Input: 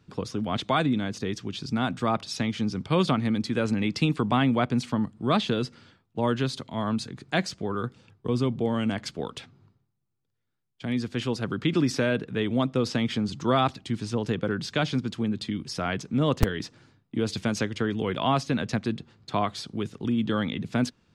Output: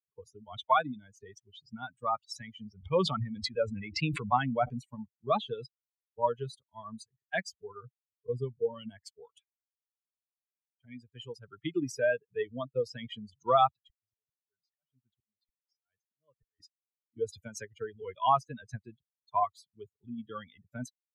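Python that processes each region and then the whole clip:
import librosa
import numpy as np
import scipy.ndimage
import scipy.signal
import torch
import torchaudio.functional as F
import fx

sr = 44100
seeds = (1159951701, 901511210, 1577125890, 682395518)

y = fx.chain(x, sr, fx.high_shelf(hz=6900.0, db=-10.5),
    fx.sustainer(db_per_s=26.0), at=(2.69, 4.74))
y = fx.chain(y, sr, fx.lowpass(hz=6200.0, slope=12),
    fx.auto_swell(attack_ms=762.0), at=(13.62, 16.6))
y = fx.bin_expand(y, sr, power=3.0)
y = fx.graphic_eq(y, sr, hz=(250, 500, 1000), db=(-8, 6, 9))
y = y * librosa.db_to_amplitude(-1.5)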